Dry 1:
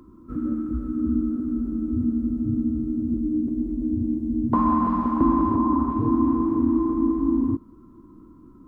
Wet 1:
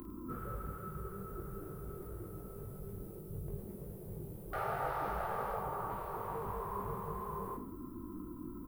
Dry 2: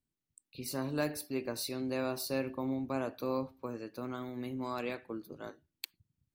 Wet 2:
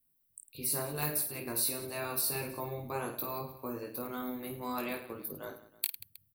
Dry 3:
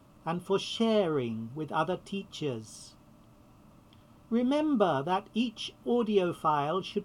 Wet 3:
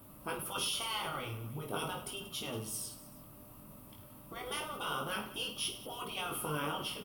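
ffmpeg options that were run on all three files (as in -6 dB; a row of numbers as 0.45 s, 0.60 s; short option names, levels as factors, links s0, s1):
-af "aexciter=amount=7.9:drive=5.6:freq=9400,afftfilt=real='re*lt(hypot(re,im),0.1)':imag='im*lt(hypot(re,im),0.1)':win_size=1024:overlap=0.75,aecho=1:1:20|52|103.2|185.1|316.2:0.631|0.398|0.251|0.158|0.1"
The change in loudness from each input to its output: -18.5 LU, +2.5 LU, -7.5 LU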